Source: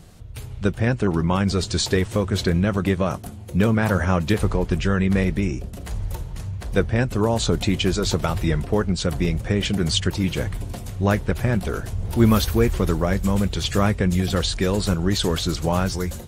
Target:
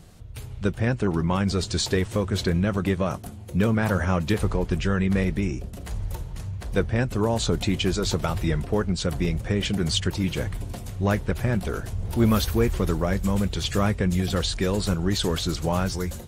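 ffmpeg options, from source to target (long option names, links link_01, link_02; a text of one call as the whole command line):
ffmpeg -i in.wav -af "aeval=exprs='0.596*(cos(1*acos(clip(val(0)/0.596,-1,1)))-cos(1*PI/2))+0.0531*(cos(2*acos(clip(val(0)/0.596,-1,1)))-cos(2*PI/2))+0.00841*(cos(8*acos(clip(val(0)/0.596,-1,1)))-cos(8*PI/2))':channel_layout=same,acontrast=38,volume=-8dB" out.wav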